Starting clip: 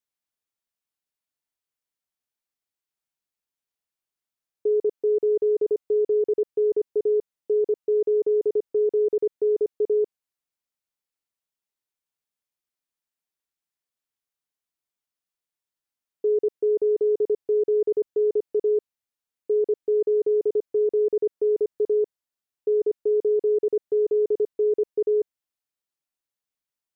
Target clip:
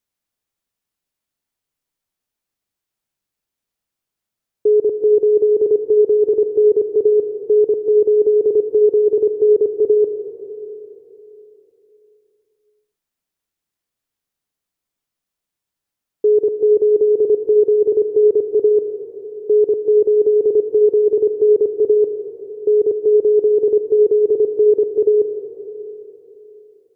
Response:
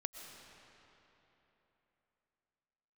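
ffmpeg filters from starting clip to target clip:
-filter_complex "[0:a]asplit=2[link_01][link_02];[1:a]atrim=start_sample=2205,lowshelf=frequency=470:gain=9[link_03];[link_02][link_03]afir=irnorm=-1:irlink=0,volume=5dB[link_04];[link_01][link_04]amix=inputs=2:normalize=0,volume=-1.5dB"

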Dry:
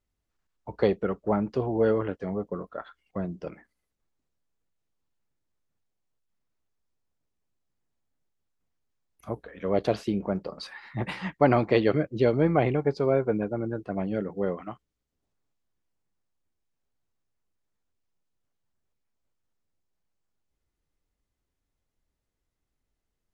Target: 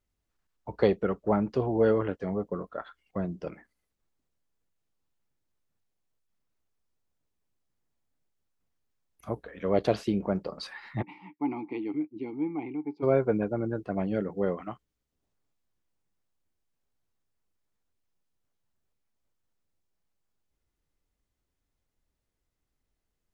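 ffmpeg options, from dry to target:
ffmpeg -i in.wav -filter_complex "[0:a]asplit=3[link_01][link_02][link_03];[link_01]afade=type=out:start_time=11.01:duration=0.02[link_04];[link_02]asplit=3[link_05][link_06][link_07];[link_05]bandpass=frequency=300:width_type=q:width=8,volume=0dB[link_08];[link_06]bandpass=frequency=870:width_type=q:width=8,volume=-6dB[link_09];[link_07]bandpass=frequency=2240:width_type=q:width=8,volume=-9dB[link_10];[link_08][link_09][link_10]amix=inputs=3:normalize=0,afade=type=in:start_time=11.01:duration=0.02,afade=type=out:start_time=13.02:duration=0.02[link_11];[link_03]afade=type=in:start_time=13.02:duration=0.02[link_12];[link_04][link_11][link_12]amix=inputs=3:normalize=0" out.wav

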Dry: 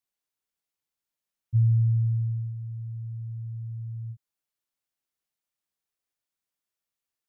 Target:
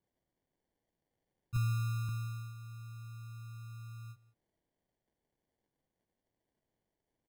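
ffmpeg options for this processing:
ffmpeg -i in.wav -filter_complex "[0:a]asettb=1/sr,asplit=3[link_01][link_02][link_03];[link_01]atrim=end=1.564[link_04];[link_02]atrim=start=1.56:end=2.09,asetpts=PTS-STARTPTS,afade=type=in:duration=0.004:curve=qsin,afade=type=out:start_time=0.526:duration=0.004:curve=qsin,highpass=62[link_05];[link_03]atrim=start=2.086[link_06];[link_04][link_05]acrossfade=duration=0.004:curve1=hsin:curve2=qsin[link_07];[link_07][link_06]acrossfade=duration=0.004:curve1=qsin:curve2=hsin,equalizer=frequency=93:width=0.49:gain=-13,acrusher=samples=34:mix=1:aa=0.000001,asplit=2[link_08][link_09];[link_09]aecho=0:1:180:0.0944[link_10];[link_08][link_10]amix=inputs=2:normalize=0,volume=1.5dB" out.wav

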